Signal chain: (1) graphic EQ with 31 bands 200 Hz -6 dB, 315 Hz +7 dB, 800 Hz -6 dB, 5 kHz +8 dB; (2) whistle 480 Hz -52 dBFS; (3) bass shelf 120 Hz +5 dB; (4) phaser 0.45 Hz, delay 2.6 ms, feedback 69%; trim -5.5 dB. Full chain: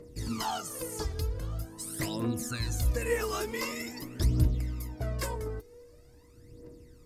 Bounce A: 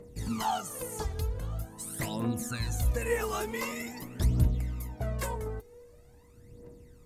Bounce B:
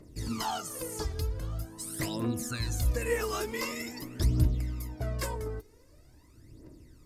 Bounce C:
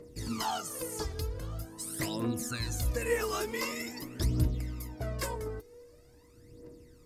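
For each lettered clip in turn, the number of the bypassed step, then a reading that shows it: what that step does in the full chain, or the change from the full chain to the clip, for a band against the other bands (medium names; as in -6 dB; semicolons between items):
1, 1 kHz band +3.0 dB; 2, momentary loudness spread change -1 LU; 3, 125 Hz band -3.0 dB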